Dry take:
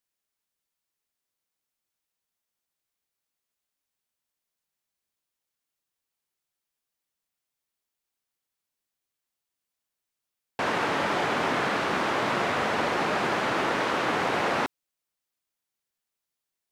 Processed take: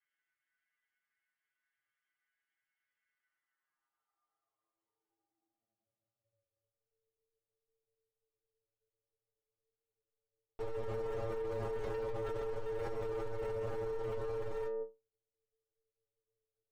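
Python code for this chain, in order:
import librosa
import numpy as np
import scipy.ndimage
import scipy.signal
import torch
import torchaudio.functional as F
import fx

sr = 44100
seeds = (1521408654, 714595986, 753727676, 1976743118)

y = fx.lower_of_two(x, sr, delay_ms=9.2)
y = fx.air_absorb(y, sr, metres=300.0)
y = fx.filter_sweep_bandpass(y, sr, from_hz=1900.0, to_hz=220.0, start_s=3.11, end_s=7.04, q=6.3)
y = fx.ripple_eq(y, sr, per_octave=1.3, db=10)
y = y * np.sin(2.0 * np.pi * 230.0 * np.arange(len(y)) / sr)
y = fx.leveller(y, sr, passes=5)
y = fx.stiff_resonator(y, sr, f0_hz=110.0, decay_s=0.25, stiffness=0.002)
y = fx.env_flatten(y, sr, amount_pct=100)
y = F.gain(torch.from_numpy(y), -2.5).numpy()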